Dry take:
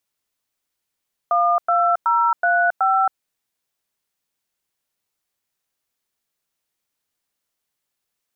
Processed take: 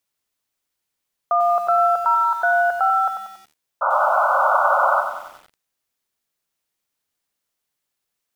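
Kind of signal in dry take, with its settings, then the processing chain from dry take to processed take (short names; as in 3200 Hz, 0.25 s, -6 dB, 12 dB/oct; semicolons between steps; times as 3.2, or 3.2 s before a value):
DTMF "12035", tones 0.272 s, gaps 0.102 s, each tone -17 dBFS
painted sound noise, 3.81–5.01, 530–1500 Hz -18 dBFS; lo-fi delay 93 ms, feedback 55%, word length 7-bit, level -7.5 dB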